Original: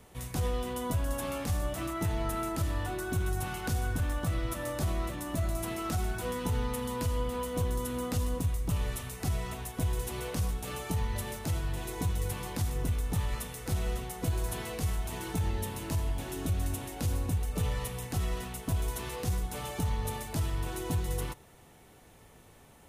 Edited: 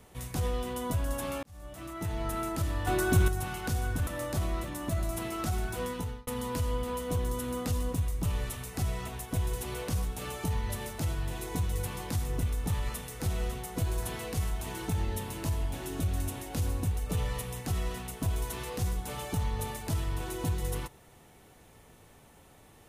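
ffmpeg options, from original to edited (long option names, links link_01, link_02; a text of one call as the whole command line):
ffmpeg -i in.wav -filter_complex "[0:a]asplit=6[link_01][link_02][link_03][link_04][link_05][link_06];[link_01]atrim=end=1.43,asetpts=PTS-STARTPTS,afade=type=out:start_time=1.426:duration=0.004:curve=hsin[link_07];[link_02]atrim=start=1.43:end=2.872,asetpts=PTS-STARTPTS,afade=type=in:duration=0.94[link_08];[link_03]atrim=start=2.868:end=3.282,asetpts=PTS-STARTPTS,volume=7.5dB[link_09];[link_04]atrim=start=3.278:end=4.072[link_10];[link_05]atrim=start=4.528:end=6.73,asetpts=PTS-STARTPTS,afade=type=out:start_time=1.812:duration=0.39[link_11];[link_06]atrim=start=6.73,asetpts=PTS-STARTPTS,afade=type=in:duration=0.004:curve=hsin[link_12];[link_07][link_08]concat=n=2:v=0:a=1[link_13];[link_13][link_09]acrossfade=duration=0.004:curve1=hsin:curve2=hsin[link_14];[link_14][link_10]acrossfade=duration=0.004:curve1=hsin:curve2=hsin[link_15];[link_11][link_12]concat=n=2:v=0:a=1[link_16];[link_15][link_16]acrossfade=duration=0.004:curve1=hsin:curve2=hsin" out.wav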